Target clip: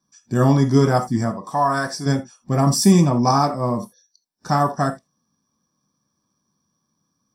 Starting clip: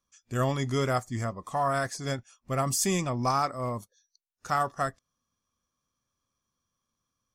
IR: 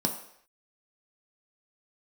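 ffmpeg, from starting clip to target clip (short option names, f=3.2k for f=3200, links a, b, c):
-filter_complex "[0:a]asettb=1/sr,asplit=3[a][b][c];[a]atrim=end=1.314[d];[b]atrim=start=1.31:end=2.06,asetpts=PTS-STARTPTS,afade=t=in:d=0.004:c=qsin,afade=t=out:st=0.746:d=0.004:c=qsin,lowshelf=f=340:g=-10[e];[c]atrim=start=2.056[f];[d][e]acrossfade=d=0.004:c1=hsin:c2=qsin[g];[g][f]acrossfade=d=0.004:c1=qsin:c2=hsin[h];[1:a]atrim=start_sample=2205,atrim=end_sample=3969[i];[h][i]afir=irnorm=-1:irlink=0"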